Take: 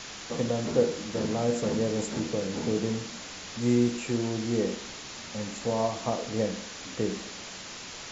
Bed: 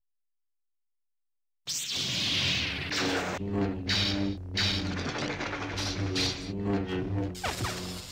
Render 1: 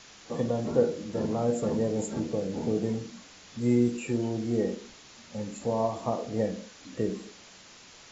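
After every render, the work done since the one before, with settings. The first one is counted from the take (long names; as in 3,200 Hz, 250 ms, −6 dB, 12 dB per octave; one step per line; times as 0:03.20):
noise reduction from a noise print 10 dB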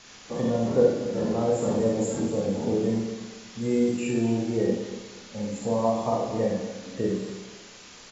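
repeating echo 241 ms, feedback 29%, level −12 dB
four-comb reverb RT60 0.61 s, combs from 31 ms, DRR −1.5 dB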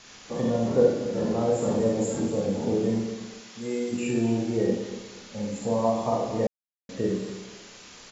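0:03.40–0:03.91: high-pass filter 200 Hz → 810 Hz 6 dB per octave
0:06.47–0:06.89: silence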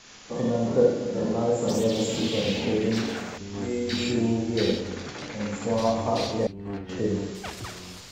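mix in bed −5 dB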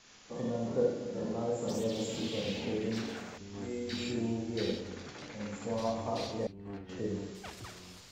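level −9.5 dB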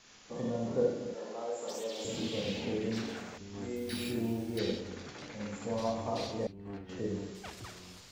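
0:01.14–0:02.05: high-pass filter 520 Hz
0:03.76–0:04.59: bad sample-rate conversion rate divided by 3×, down filtered, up hold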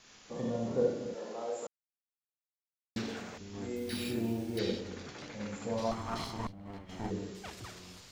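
0:01.67–0:02.96: silence
0:05.91–0:07.11: lower of the sound and its delayed copy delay 0.96 ms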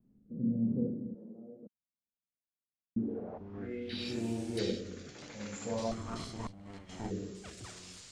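rotating-speaker cabinet horn 0.85 Hz
low-pass filter sweep 220 Hz → 8,500 Hz, 0:02.93–0:04.24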